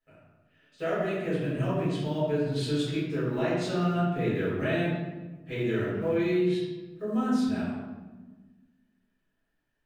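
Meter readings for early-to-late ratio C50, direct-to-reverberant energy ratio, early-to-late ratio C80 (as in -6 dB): -0.5 dB, -11.5 dB, 2.0 dB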